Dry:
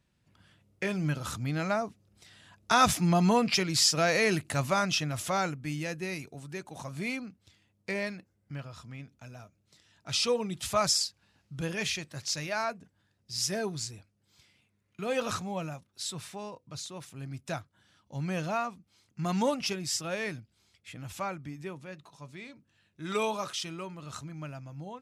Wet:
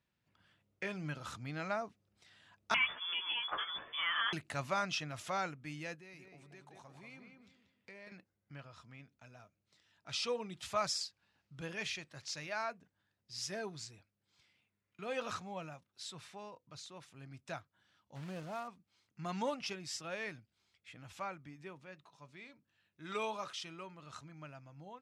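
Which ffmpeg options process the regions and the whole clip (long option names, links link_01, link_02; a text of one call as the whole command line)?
ffmpeg -i in.wav -filter_complex "[0:a]asettb=1/sr,asplit=3[link_01][link_02][link_03];[link_01]atrim=end=2.744[link_04];[link_02]atrim=start=2.74:end=4.33,asetpts=PTS-STARTPTS,afade=type=in:duration=0.004:curve=qsin,afade=type=out:start_time=1.586:duration=0.004:curve=qsin,asplit=2[link_05][link_06];[link_06]adelay=14,volume=-3.5dB[link_07];[link_05][link_07]amix=inputs=2:normalize=0,atrim=end_sample=70119,acrossover=split=120|1200[link_08][link_09][link_10];[link_08]acompressor=threshold=-48dB:ratio=4[link_11];[link_09]acompressor=threshold=-32dB:ratio=4[link_12];[link_10]acompressor=threshold=-23dB:ratio=4[link_13];[link_11][link_12][link_13]amix=inputs=3:normalize=0,lowpass=frequency=3100:width_type=q:width=0.5098,lowpass=frequency=3100:width_type=q:width=0.6013,lowpass=frequency=3100:width_type=q:width=0.9,lowpass=frequency=3100:width_type=q:width=2.563,afreqshift=-3600[link_14];[link_03]atrim=start=4.326[link_15];[link_04][link_14]acrossfade=duration=0.004:curve1=hsin:curve2=qsin[link_16];[link_16][link_15]acrossfade=duration=0.004:curve1=qsin:curve2=hsin,asettb=1/sr,asplit=3[link_17][link_18][link_19];[link_17]atrim=end=5.954[link_20];[link_18]atrim=start=5.95:end=8.12,asetpts=PTS-STARTPTS,afade=type=in:duration=0.004:curve=qsin,afade=type=out:start_time=2.166:duration=0.004:curve=qsin,acompressor=threshold=-46dB:ratio=3:attack=3.2:release=140:knee=1:detection=peak,asplit=2[link_21][link_22];[link_22]adelay=185,lowpass=frequency=2400:poles=1,volume=-4.5dB,asplit=2[link_23][link_24];[link_24]adelay=185,lowpass=frequency=2400:poles=1,volume=0.31,asplit=2[link_25][link_26];[link_26]adelay=185,lowpass=frequency=2400:poles=1,volume=0.31,asplit=2[link_27][link_28];[link_28]adelay=185,lowpass=frequency=2400:poles=1,volume=0.31[link_29];[link_21][link_23][link_25][link_27][link_29]amix=inputs=5:normalize=0,atrim=end_sample=95697[link_30];[link_19]atrim=start=8.116[link_31];[link_20][link_30]acrossfade=duration=0.004:curve1=hsin:curve2=qsin[link_32];[link_32][link_31]acrossfade=duration=0.004:curve1=qsin:curve2=hsin,asettb=1/sr,asplit=3[link_33][link_34][link_35];[link_33]atrim=end=18.154[link_36];[link_34]atrim=start=18.15:end=18.68,asetpts=PTS-STARTPTS,afade=type=in:duration=0.004:curve=qsin,afade=type=out:start_time=0.526:duration=0.004:curve=qsin,equalizer=frequency=3000:width=0.41:gain=-11.5,acrusher=bits=3:mode=log:mix=0:aa=0.000001[link_37];[link_35]atrim=start=18.676[link_38];[link_36][link_37]acrossfade=duration=0.004:curve1=hsin:curve2=qsin[link_39];[link_39][link_38]acrossfade=duration=0.004:curve1=qsin:curve2=hsin,highpass=frequency=920:poles=1,aemphasis=mode=reproduction:type=bsi,volume=-4dB" out.wav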